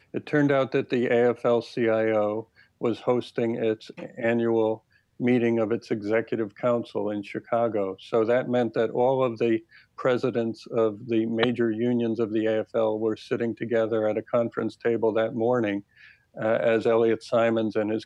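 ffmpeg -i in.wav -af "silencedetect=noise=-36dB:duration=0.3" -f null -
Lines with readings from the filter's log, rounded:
silence_start: 2.41
silence_end: 2.81 | silence_duration: 0.40
silence_start: 4.75
silence_end: 5.20 | silence_duration: 0.45
silence_start: 9.58
silence_end: 9.99 | silence_duration: 0.40
silence_start: 15.80
silence_end: 16.37 | silence_duration: 0.57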